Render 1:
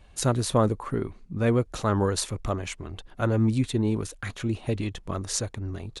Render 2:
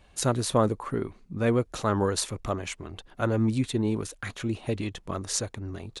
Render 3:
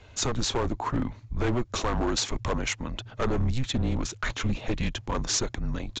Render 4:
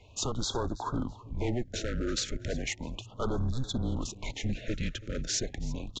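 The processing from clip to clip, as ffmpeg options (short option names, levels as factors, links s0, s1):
-af "lowshelf=f=110:g=-7"
-af "acompressor=threshold=0.0501:ratio=5,afreqshift=-130,aresample=16000,asoftclip=type=hard:threshold=0.0376,aresample=44100,volume=2.24"
-af "aecho=1:1:329|658:0.112|0.0325,afftfilt=real='re*(1-between(b*sr/1024,850*pow(2400/850,0.5+0.5*sin(2*PI*0.35*pts/sr))/1.41,850*pow(2400/850,0.5+0.5*sin(2*PI*0.35*pts/sr))*1.41))':imag='im*(1-between(b*sr/1024,850*pow(2400/850,0.5+0.5*sin(2*PI*0.35*pts/sr))/1.41,850*pow(2400/850,0.5+0.5*sin(2*PI*0.35*pts/sr))*1.41))':win_size=1024:overlap=0.75,volume=0.596"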